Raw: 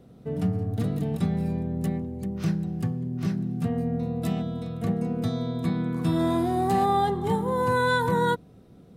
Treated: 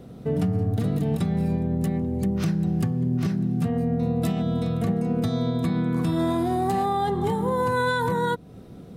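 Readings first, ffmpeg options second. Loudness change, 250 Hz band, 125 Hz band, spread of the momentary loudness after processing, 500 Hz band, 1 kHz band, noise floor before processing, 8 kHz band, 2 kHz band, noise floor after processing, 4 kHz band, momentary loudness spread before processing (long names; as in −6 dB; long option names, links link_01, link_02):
+2.0 dB, +2.5 dB, +3.0 dB, 2 LU, +1.5 dB, −0.5 dB, −51 dBFS, +2.0 dB, −0.5 dB, −43 dBFS, +0.5 dB, 7 LU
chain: -af "alimiter=level_in=0.5dB:limit=-24dB:level=0:latency=1:release=236,volume=-0.5dB,volume=8.5dB"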